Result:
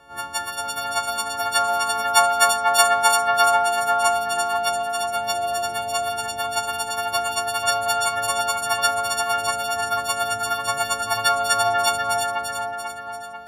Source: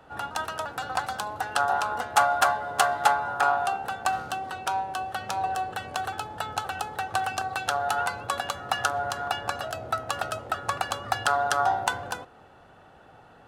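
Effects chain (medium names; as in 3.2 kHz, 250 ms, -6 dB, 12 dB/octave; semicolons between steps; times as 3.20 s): partials quantised in pitch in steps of 4 st; two-band feedback delay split 2.7 kHz, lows 491 ms, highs 341 ms, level -3.5 dB; trim -1 dB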